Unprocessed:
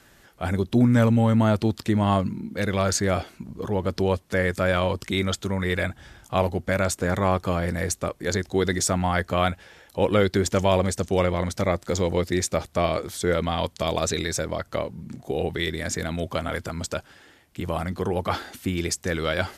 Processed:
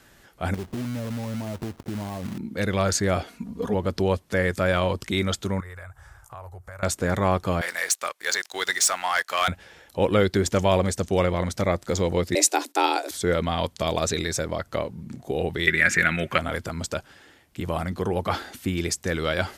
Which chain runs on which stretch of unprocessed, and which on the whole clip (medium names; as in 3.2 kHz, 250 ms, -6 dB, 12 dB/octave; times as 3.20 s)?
0.54–2.38 s: low-pass 1 kHz 24 dB/octave + compression 16:1, threshold -27 dBFS + companded quantiser 4-bit
3.27–3.74 s: high-pass 56 Hz + comb 4.2 ms, depth 81%
5.60–6.83 s: FFT filter 110 Hz 0 dB, 250 Hz -29 dB, 370 Hz -12 dB, 1.2 kHz +3 dB, 3.3 kHz -15 dB, 8.3 kHz 0 dB + compression 4:1, threshold -39 dBFS
7.61–9.48 s: high-pass 1.2 kHz + waveshaping leveller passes 2
12.35–13.11 s: gate -54 dBFS, range -22 dB + treble shelf 2.5 kHz +10 dB + frequency shift +210 Hz
15.67–16.38 s: high-order bell 1.9 kHz +15.5 dB 1.3 oct + band-stop 5.2 kHz, Q 21 + comb 5.5 ms, depth 39%
whole clip: none